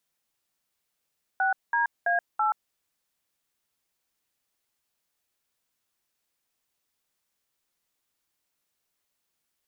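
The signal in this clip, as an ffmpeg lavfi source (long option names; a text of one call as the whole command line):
ffmpeg -f lavfi -i "aevalsrc='0.0631*clip(min(mod(t,0.331),0.128-mod(t,0.331))/0.002,0,1)*(eq(floor(t/0.331),0)*(sin(2*PI*770*mod(t,0.331))+sin(2*PI*1477*mod(t,0.331)))+eq(floor(t/0.331),1)*(sin(2*PI*941*mod(t,0.331))+sin(2*PI*1633*mod(t,0.331)))+eq(floor(t/0.331),2)*(sin(2*PI*697*mod(t,0.331))+sin(2*PI*1633*mod(t,0.331)))+eq(floor(t/0.331),3)*(sin(2*PI*852*mod(t,0.331))+sin(2*PI*1336*mod(t,0.331))))':duration=1.324:sample_rate=44100" out.wav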